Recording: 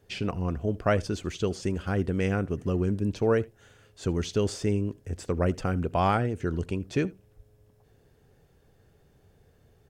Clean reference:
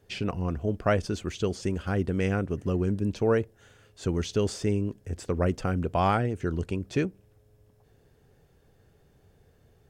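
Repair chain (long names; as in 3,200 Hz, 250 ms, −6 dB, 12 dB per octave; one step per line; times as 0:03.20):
0:07.36–0:07.48: high-pass filter 140 Hz 24 dB per octave
echo removal 78 ms −23.5 dB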